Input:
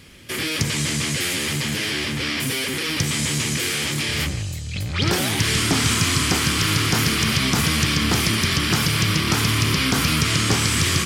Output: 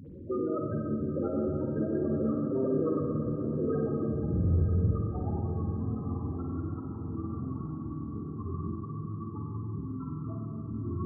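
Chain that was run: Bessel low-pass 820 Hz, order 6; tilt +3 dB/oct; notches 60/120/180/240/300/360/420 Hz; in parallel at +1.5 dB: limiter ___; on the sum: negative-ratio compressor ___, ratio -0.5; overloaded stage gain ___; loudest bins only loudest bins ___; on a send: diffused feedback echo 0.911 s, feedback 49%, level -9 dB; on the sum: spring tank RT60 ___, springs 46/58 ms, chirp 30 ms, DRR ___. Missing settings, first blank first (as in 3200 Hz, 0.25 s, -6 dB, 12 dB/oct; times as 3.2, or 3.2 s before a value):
-22.5 dBFS, -31 dBFS, 25.5 dB, 8, 2.1 s, -0.5 dB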